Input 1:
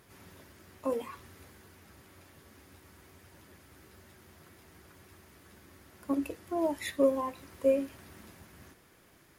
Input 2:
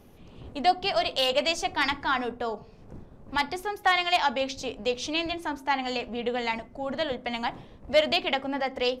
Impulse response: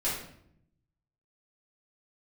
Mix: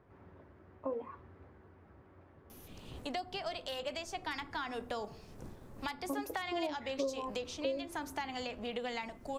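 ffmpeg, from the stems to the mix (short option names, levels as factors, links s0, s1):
-filter_complex "[0:a]lowpass=1100,equalizer=f=200:w=1.5:g=-3.5,volume=0.944[s0];[1:a]crystalizer=i=3.5:c=0,acompressor=threshold=0.0282:ratio=3,adelay=2500,volume=0.668[s1];[s0][s1]amix=inputs=2:normalize=0,acrossover=split=350|2200[s2][s3][s4];[s2]acompressor=threshold=0.00631:ratio=4[s5];[s3]acompressor=threshold=0.0158:ratio=4[s6];[s4]acompressor=threshold=0.00398:ratio=4[s7];[s5][s6][s7]amix=inputs=3:normalize=0"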